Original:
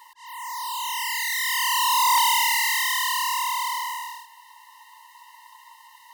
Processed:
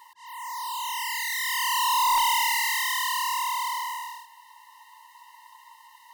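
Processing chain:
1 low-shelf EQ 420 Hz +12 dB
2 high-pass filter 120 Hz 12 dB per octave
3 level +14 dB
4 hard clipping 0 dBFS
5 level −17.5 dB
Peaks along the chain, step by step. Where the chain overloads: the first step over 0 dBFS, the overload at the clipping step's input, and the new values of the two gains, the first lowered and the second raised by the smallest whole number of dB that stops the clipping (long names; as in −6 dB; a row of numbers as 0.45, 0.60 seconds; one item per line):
−9.0, −9.5, +4.5, 0.0, −17.5 dBFS
step 3, 4.5 dB
step 3 +9 dB, step 5 −12.5 dB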